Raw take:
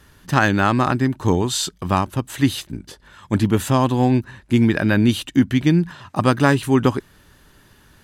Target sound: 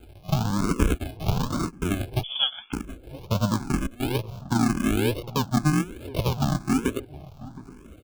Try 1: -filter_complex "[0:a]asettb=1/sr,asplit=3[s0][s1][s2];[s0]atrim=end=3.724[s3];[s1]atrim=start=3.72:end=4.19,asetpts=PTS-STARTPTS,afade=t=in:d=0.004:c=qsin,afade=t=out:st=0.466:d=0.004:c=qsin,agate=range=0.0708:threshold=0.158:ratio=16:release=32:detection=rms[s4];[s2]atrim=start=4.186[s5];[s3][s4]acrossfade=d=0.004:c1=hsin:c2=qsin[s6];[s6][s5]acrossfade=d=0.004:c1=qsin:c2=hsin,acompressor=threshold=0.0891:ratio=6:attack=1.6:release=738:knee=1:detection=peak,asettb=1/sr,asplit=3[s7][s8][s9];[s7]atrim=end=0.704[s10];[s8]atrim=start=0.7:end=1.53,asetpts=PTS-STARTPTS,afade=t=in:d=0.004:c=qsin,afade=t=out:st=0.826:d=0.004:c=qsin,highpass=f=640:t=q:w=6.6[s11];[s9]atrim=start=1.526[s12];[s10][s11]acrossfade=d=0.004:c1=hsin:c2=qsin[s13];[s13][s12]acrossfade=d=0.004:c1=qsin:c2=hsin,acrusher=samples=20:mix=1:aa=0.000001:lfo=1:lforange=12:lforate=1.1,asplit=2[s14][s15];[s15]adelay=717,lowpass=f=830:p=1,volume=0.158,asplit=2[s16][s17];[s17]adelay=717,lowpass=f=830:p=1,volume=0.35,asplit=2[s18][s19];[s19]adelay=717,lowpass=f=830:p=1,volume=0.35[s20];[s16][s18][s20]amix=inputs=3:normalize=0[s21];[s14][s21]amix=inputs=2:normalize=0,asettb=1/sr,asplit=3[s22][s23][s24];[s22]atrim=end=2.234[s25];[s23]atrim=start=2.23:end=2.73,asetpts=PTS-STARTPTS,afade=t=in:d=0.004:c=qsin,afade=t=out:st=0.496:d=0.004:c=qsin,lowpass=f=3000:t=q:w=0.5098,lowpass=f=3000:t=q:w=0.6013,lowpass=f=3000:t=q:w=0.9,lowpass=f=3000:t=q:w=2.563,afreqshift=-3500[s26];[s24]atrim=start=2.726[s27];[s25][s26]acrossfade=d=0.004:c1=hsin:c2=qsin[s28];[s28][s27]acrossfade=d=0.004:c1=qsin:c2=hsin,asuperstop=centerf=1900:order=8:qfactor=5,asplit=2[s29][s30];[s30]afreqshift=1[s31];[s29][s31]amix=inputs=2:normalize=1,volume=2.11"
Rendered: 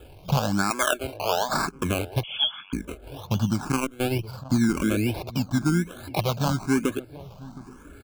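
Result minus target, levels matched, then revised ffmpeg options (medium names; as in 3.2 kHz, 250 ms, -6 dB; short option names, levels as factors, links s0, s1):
decimation with a swept rate: distortion -13 dB
-filter_complex "[0:a]asettb=1/sr,asplit=3[s0][s1][s2];[s0]atrim=end=3.724[s3];[s1]atrim=start=3.72:end=4.19,asetpts=PTS-STARTPTS,afade=t=in:d=0.004:c=qsin,afade=t=out:st=0.466:d=0.004:c=qsin,agate=range=0.0708:threshold=0.158:ratio=16:release=32:detection=rms[s4];[s2]atrim=start=4.186[s5];[s3][s4]acrossfade=d=0.004:c1=hsin:c2=qsin[s6];[s6][s5]acrossfade=d=0.004:c1=qsin:c2=hsin,acompressor=threshold=0.0891:ratio=6:attack=1.6:release=738:knee=1:detection=peak,asettb=1/sr,asplit=3[s7][s8][s9];[s7]atrim=end=0.704[s10];[s8]atrim=start=0.7:end=1.53,asetpts=PTS-STARTPTS,afade=t=in:d=0.004:c=qsin,afade=t=out:st=0.826:d=0.004:c=qsin,highpass=f=640:t=q:w=6.6[s11];[s9]atrim=start=1.526[s12];[s10][s11]acrossfade=d=0.004:c1=hsin:c2=qsin[s13];[s13][s12]acrossfade=d=0.004:c1=qsin:c2=hsin,acrusher=samples=75:mix=1:aa=0.000001:lfo=1:lforange=45:lforate=1.1,asplit=2[s14][s15];[s15]adelay=717,lowpass=f=830:p=1,volume=0.158,asplit=2[s16][s17];[s17]adelay=717,lowpass=f=830:p=1,volume=0.35,asplit=2[s18][s19];[s19]adelay=717,lowpass=f=830:p=1,volume=0.35[s20];[s16][s18][s20]amix=inputs=3:normalize=0[s21];[s14][s21]amix=inputs=2:normalize=0,asettb=1/sr,asplit=3[s22][s23][s24];[s22]atrim=end=2.234[s25];[s23]atrim=start=2.23:end=2.73,asetpts=PTS-STARTPTS,afade=t=in:d=0.004:c=qsin,afade=t=out:st=0.496:d=0.004:c=qsin,lowpass=f=3000:t=q:w=0.5098,lowpass=f=3000:t=q:w=0.6013,lowpass=f=3000:t=q:w=0.9,lowpass=f=3000:t=q:w=2.563,afreqshift=-3500[s26];[s24]atrim=start=2.726[s27];[s25][s26]acrossfade=d=0.004:c1=hsin:c2=qsin[s28];[s28][s27]acrossfade=d=0.004:c1=qsin:c2=hsin,asuperstop=centerf=1900:order=8:qfactor=5,asplit=2[s29][s30];[s30]afreqshift=1[s31];[s29][s31]amix=inputs=2:normalize=1,volume=2.11"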